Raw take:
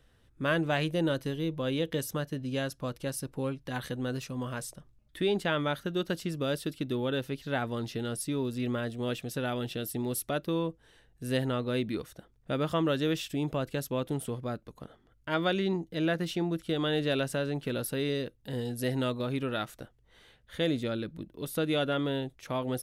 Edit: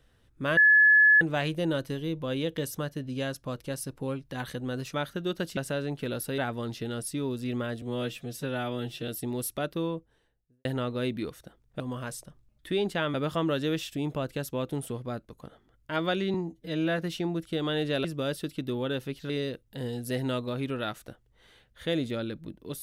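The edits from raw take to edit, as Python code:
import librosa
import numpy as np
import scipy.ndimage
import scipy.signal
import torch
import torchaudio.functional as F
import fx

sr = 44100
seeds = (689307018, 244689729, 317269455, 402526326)

y = fx.studio_fade_out(x, sr, start_s=10.41, length_s=0.96)
y = fx.edit(y, sr, fx.insert_tone(at_s=0.57, length_s=0.64, hz=1710.0, db=-15.0),
    fx.move(start_s=4.3, length_s=1.34, to_s=12.52),
    fx.swap(start_s=6.27, length_s=1.25, other_s=17.21, other_length_s=0.81),
    fx.stretch_span(start_s=8.96, length_s=0.84, factor=1.5),
    fx.stretch_span(start_s=15.72, length_s=0.43, factor=1.5), tone=tone)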